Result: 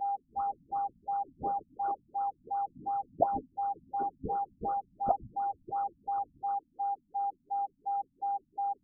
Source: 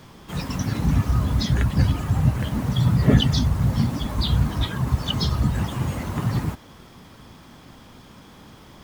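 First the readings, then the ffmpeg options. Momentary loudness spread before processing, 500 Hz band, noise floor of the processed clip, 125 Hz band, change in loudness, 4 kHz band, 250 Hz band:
9 LU, −5.5 dB, −73 dBFS, −35.0 dB, −12.5 dB, below −40 dB, −24.0 dB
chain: -af "aeval=exprs='val(0)+0.0316*sin(2*PI*2900*n/s)':channel_layout=same,lowpass=frequency=3100:width_type=q:width=0.5098,lowpass=frequency=3100:width_type=q:width=0.6013,lowpass=frequency=3100:width_type=q:width=0.9,lowpass=frequency=3100:width_type=q:width=2.563,afreqshift=-3700,afftfilt=real='re*lt(b*sr/1024,260*pow(1500/260,0.5+0.5*sin(2*PI*2.8*pts/sr)))':imag='im*lt(b*sr/1024,260*pow(1500/260,0.5+0.5*sin(2*PI*2.8*pts/sr)))':win_size=1024:overlap=0.75,volume=3dB"

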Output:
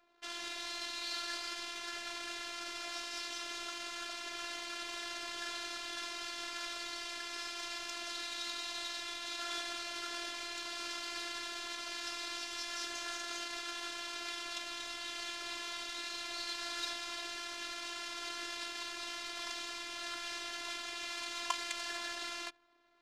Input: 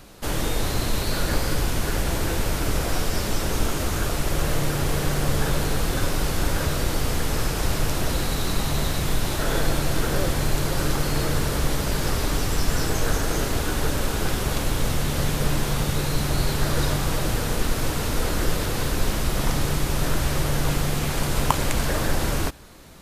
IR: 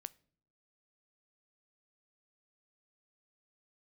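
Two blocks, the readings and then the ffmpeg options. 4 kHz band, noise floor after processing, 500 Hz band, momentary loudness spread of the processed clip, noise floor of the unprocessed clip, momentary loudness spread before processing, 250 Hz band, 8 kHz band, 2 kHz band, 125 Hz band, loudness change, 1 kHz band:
−7.5 dB, −44 dBFS, −22.0 dB, 3 LU, −27 dBFS, 2 LU, −24.5 dB, −14.5 dB, −10.5 dB, below −40 dB, −14.5 dB, −14.0 dB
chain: -filter_complex "[0:a]asplit=2[link_01][link_02];[1:a]atrim=start_sample=2205,asetrate=42336,aresample=44100[link_03];[link_02][link_03]afir=irnorm=-1:irlink=0,volume=5.5dB[link_04];[link_01][link_04]amix=inputs=2:normalize=0,adynamicsmooth=sensitivity=5:basefreq=650,lowpass=4700,aderivative,afftfilt=real='hypot(re,im)*cos(PI*b)':imag='0':win_size=512:overlap=0.75,volume=-1dB"

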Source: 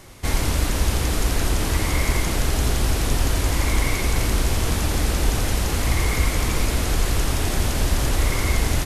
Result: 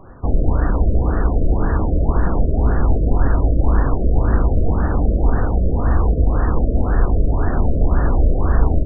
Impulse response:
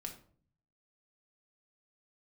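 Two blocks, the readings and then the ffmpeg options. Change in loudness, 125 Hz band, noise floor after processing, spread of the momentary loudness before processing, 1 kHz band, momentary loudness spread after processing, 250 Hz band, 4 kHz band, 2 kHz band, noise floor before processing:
+3.5 dB, +5.0 dB, −21 dBFS, 1 LU, +2.5 dB, 2 LU, +5.5 dB, below −40 dB, −6.5 dB, −25 dBFS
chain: -filter_complex "[0:a]asplit=2[link_01][link_02];[1:a]atrim=start_sample=2205[link_03];[link_02][link_03]afir=irnorm=-1:irlink=0,volume=-2.5dB[link_04];[link_01][link_04]amix=inputs=2:normalize=0,afftfilt=real='re*lt(b*sr/1024,660*pow(1900/660,0.5+0.5*sin(2*PI*1.9*pts/sr)))':imag='im*lt(b*sr/1024,660*pow(1900/660,0.5+0.5*sin(2*PI*1.9*pts/sr)))':win_size=1024:overlap=0.75,volume=1.5dB"

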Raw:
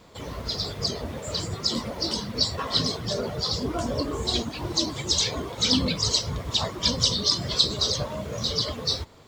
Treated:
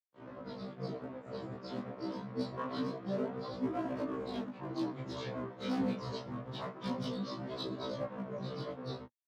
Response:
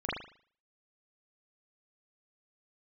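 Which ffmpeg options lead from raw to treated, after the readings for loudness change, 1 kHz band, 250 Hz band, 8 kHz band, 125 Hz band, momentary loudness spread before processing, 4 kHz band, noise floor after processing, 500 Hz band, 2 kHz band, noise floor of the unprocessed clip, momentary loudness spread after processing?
−14.5 dB, −8.5 dB, −6.0 dB, below −30 dB, −12.0 dB, 8 LU, −25.5 dB, −52 dBFS, −7.5 dB, −12.5 dB, −39 dBFS, 8 LU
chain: -af "aeval=exprs='sgn(val(0))*max(abs(val(0))-0.0168,0)':channel_layout=same,lowpass=1300,equalizer=frequency=240:width=5.3:gain=6,bandreject=frequency=830:width=12,volume=25.5dB,asoftclip=hard,volume=-25.5dB,flanger=delay=18.5:depth=7:speed=0.26,highpass=frequency=120:width=0.5412,highpass=frequency=120:width=1.3066,afftfilt=real='re*1.73*eq(mod(b,3),0)':imag='im*1.73*eq(mod(b,3),0)':win_size=2048:overlap=0.75,volume=2dB"

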